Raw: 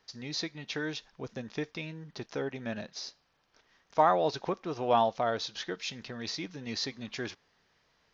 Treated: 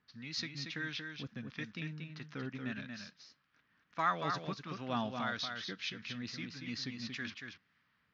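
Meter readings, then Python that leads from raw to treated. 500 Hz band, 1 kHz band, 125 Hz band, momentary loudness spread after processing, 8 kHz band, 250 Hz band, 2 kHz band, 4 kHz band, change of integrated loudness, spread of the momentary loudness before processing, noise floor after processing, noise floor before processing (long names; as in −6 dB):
−14.5 dB, −8.5 dB, −2.0 dB, 12 LU, can't be measured, −3.5 dB, −0.5 dB, −4.0 dB, −6.5 dB, 14 LU, −77 dBFS, −72 dBFS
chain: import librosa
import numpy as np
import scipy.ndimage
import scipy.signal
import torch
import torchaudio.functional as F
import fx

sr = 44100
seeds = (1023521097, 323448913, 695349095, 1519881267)

y = scipy.signal.sosfilt(scipy.signal.butter(2, 87.0, 'highpass', fs=sr, output='sos'), x)
y = fx.env_lowpass(y, sr, base_hz=2300.0, full_db=-22.5)
y = fx.band_shelf(y, sr, hz=570.0, db=-13.0, octaves=1.7)
y = fx.harmonic_tremolo(y, sr, hz=1.6, depth_pct=50, crossover_hz=740.0)
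y = fx.wow_flutter(y, sr, seeds[0], rate_hz=2.1, depth_cents=88.0)
y = y + 10.0 ** (-5.5 / 20.0) * np.pad(y, (int(232 * sr / 1000.0), 0))[:len(y)]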